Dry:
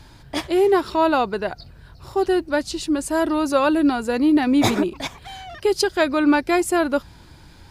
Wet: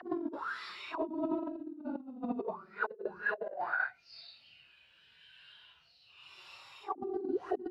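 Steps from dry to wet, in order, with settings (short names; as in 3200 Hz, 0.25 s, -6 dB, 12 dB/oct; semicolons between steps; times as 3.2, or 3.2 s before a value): Paulstretch 4.9×, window 0.05 s, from 0.75; auto-wah 250–3400 Hz, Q 9.5, down, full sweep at -16 dBFS; negative-ratio compressor -40 dBFS, ratio -0.5; gain +4 dB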